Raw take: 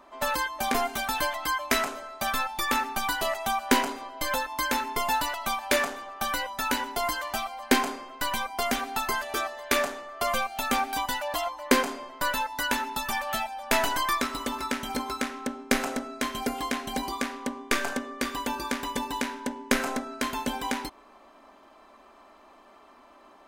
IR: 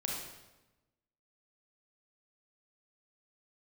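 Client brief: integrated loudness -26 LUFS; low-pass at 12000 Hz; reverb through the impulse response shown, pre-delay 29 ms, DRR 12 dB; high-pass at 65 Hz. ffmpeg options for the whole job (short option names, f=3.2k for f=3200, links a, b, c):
-filter_complex "[0:a]highpass=65,lowpass=12k,asplit=2[a][b];[1:a]atrim=start_sample=2205,adelay=29[c];[b][c]afir=irnorm=-1:irlink=0,volume=-15dB[d];[a][d]amix=inputs=2:normalize=0,volume=2.5dB"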